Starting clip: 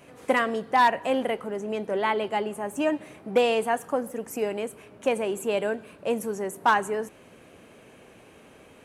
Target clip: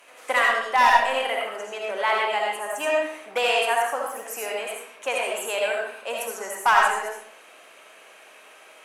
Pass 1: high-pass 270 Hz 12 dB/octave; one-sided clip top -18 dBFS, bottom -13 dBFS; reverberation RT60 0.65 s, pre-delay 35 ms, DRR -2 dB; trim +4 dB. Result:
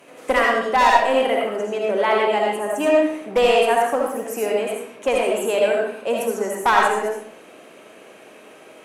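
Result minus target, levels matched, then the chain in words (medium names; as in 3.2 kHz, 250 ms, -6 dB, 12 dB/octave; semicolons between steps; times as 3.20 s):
250 Hz band +12.5 dB
high-pass 890 Hz 12 dB/octave; one-sided clip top -18 dBFS, bottom -13 dBFS; reverberation RT60 0.65 s, pre-delay 35 ms, DRR -2 dB; trim +4 dB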